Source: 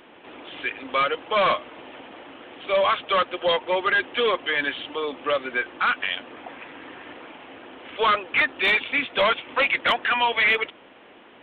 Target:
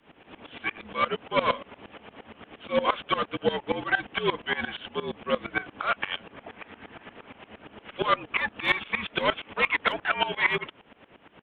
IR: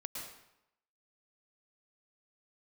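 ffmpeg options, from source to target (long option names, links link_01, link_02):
-filter_complex "[0:a]asplit=2[link_01][link_02];[link_02]asetrate=22050,aresample=44100,atempo=2,volume=-9dB[link_03];[link_01][link_03]amix=inputs=2:normalize=0,afreqshift=-54,aeval=exprs='val(0)*pow(10,-19*if(lt(mod(-8.6*n/s,1),2*abs(-8.6)/1000),1-mod(-8.6*n/s,1)/(2*abs(-8.6)/1000),(mod(-8.6*n/s,1)-2*abs(-8.6)/1000)/(1-2*abs(-8.6)/1000))/20)':channel_layout=same,volume=1dB"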